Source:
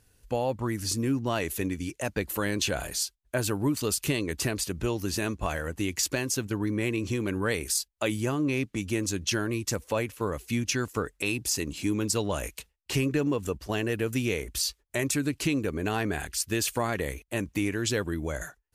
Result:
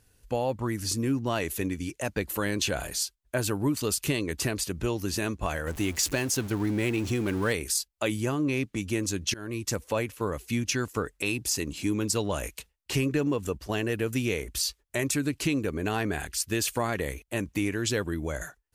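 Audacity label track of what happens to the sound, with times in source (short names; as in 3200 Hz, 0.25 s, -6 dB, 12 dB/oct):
5.670000	7.530000	zero-crossing step of -36.5 dBFS
9.340000	9.770000	fade in equal-power, from -22 dB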